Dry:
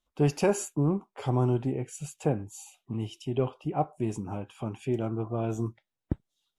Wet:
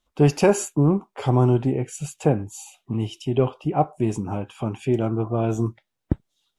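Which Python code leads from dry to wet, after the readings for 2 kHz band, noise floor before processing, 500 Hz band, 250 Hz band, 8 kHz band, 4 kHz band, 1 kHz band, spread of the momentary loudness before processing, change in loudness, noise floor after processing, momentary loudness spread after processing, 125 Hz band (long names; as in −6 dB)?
+7.5 dB, below −85 dBFS, +7.5 dB, +7.5 dB, +6.0 dB, +7.0 dB, +7.5 dB, 11 LU, +7.5 dB, −79 dBFS, 11 LU, +7.5 dB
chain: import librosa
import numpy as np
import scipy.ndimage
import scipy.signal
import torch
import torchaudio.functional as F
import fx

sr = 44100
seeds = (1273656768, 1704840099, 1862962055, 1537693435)

y = fx.high_shelf(x, sr, hz=10000.0, db=-4.0)
y = y * 10.0 ** (7.5 / 20.0)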